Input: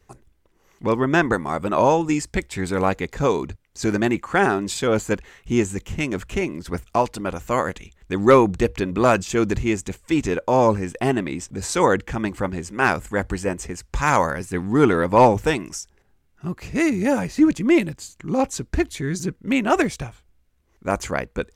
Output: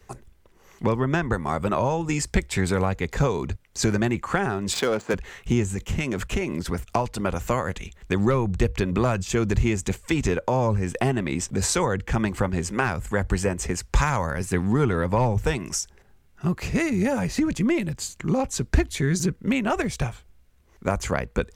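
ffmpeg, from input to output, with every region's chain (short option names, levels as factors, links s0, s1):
-filter_complex "[0:a]asettb=1/sr,asplit=3[s0][s1][s2];[s0]atrim=end=4.734[s3];[s1]atrim=start=4.73:end=5.14,asetpts=PTS-STARTPTS,afade=t=in:d=0.004:c=qsin,afade=t=out:st=0.406:d=0.004:c=qsin,aeval=exprs='val(0)+0.5*0.0178*sgn(val(0))':c=same,highpass=260,adynamicsmooth=sensitivity=4.5:basefreq=1300[s4];[s2]atrim=start=5.136[s5];[s3][s4]acrossfade=d=0.004:c1=hsin:c2=qsin[s6];[s6][s5]acrossfade=d=0.004:c1=qsin:c2=hsin,asettb=1/sr,asplit=3[s7][s8][s9];[s7]atrim=end=5.664[s10];[s8]atrim=start=5.66:end=6.88,asetpts=PTS-STARTPTS,afade=t=in:d=0.004:c=qsin,afade=t=out:st=1.216:d=0.004:c=qsin,agate=range=0.0224:threshold=0.0112:ratio=3:release=100:detection=peak,acompressor=threshold=0.0501:ratio=6:attack=3.2:release=140:knee=1:detection=peak[s11];[s9]atrim=start=6.876[s12];[s10][s11]acrossfade=d=0.004:c1=hsin:c2=qsin[s13];[s13][s12]acrossfade=d=0.004:c1=qsin:c2=hsin,equalizer=f=300:t=o:w=0.2:g=-7.5,acrossover=split=130[s14][s15];[s15]acompressor=threshold=0.0447:ratio=8[s16];[s14][s16]amix=inputs=2:normalize=0,volume=2"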